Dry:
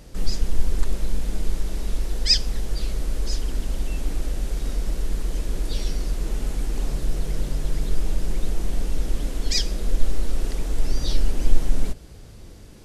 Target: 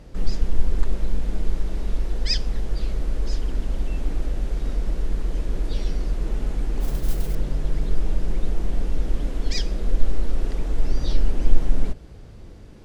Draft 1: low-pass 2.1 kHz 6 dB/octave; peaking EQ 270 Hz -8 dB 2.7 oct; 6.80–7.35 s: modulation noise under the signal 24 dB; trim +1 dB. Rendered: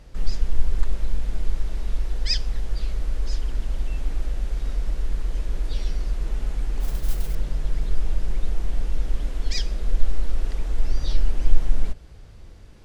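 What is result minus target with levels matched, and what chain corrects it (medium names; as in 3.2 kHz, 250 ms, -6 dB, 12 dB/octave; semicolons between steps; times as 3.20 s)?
250 Hz band -6.0 dB
low-pass 2.1 kHz 6 dB/octave; 6.80–7.35 s: modulation noise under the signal 24 dB; trim +1 dB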